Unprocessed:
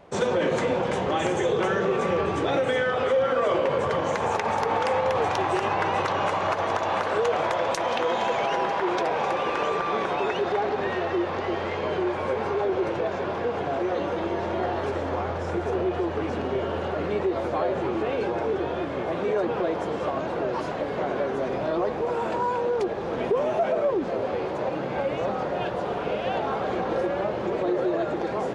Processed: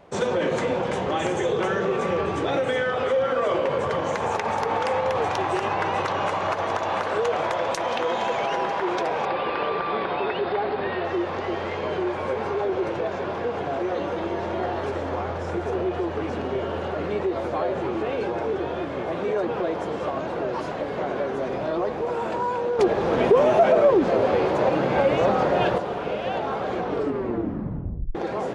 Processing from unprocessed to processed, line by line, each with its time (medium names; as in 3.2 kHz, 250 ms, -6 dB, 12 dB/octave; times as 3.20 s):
9.25–11.05 s: steep low-pass 4.9 kHz 72 dB/octave
22.79–25.78 s: gain +7 dB
26.78 s: tape stop 1.37 s